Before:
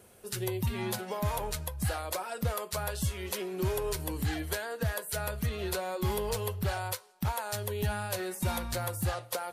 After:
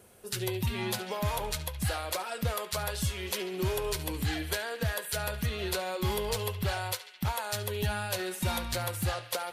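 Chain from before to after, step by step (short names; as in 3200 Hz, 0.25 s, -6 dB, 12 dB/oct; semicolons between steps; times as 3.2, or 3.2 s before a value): dynamic EQ 3400 Hz, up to +5 dB, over -51 dBFS, Q 0.8; narrowing echo 71 ms, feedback 84%, band-pass 2500 Hz, level -12 dB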